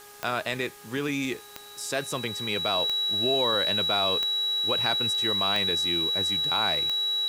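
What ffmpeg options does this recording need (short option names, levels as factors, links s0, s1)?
-af "adeclick=t=4,bandreject=f=411.9:t=h:w=4,bandreject=f=823.8:t=h:w=4,bandreject=f=1235.7:t=h:w=4,bandreject=f=1647.6:t=h:w=4,bandreject=f=3900:w=30,afftdn=nr=29:nf=-45"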